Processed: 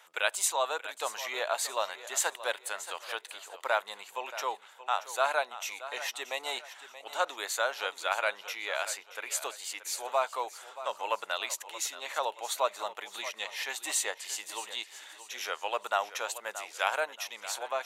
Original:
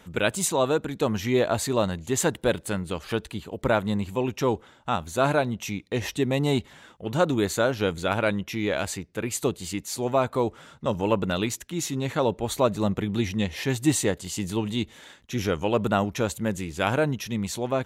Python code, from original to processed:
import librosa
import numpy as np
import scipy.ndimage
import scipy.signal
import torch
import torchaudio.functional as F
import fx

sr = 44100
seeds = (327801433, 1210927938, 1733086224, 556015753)

p1 = scipy.signal.sosfilt(scipy.signal.butter(4, 690.0, 'highpass', fs=sr, output='sos'), x)
p2 = p1 + fx.echo_feedback(p1, sr, ms=628, feedback_pct=37, wet_db=-14, dry=0)
y = F.gain(torch.from_numpy(p2), -2.0).numpy()